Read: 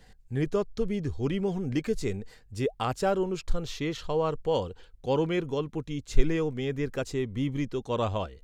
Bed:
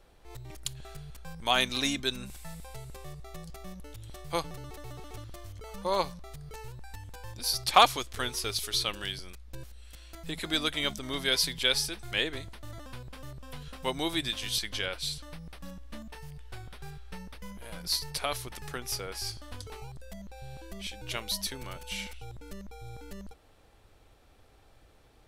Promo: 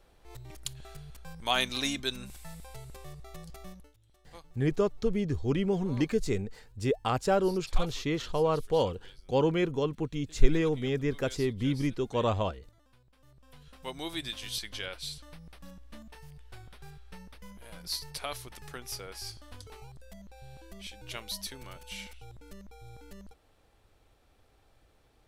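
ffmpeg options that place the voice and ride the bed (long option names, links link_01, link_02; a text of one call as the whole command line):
ffmpeg -i stem1.wav -i stem2.wav -filter_complex "[0:a]adelay=4250,volume=0.5dB[link_01];[1:a]volume=13.5dB,afade=type=out:start_time=3.67:duration=0.26:silence=0.11885,afade=type=in:start_time=13.15:duration=1.11:silence=0.16788[link_02];[link_01][link_02]amix=inputs=2:normalize=0" out.wav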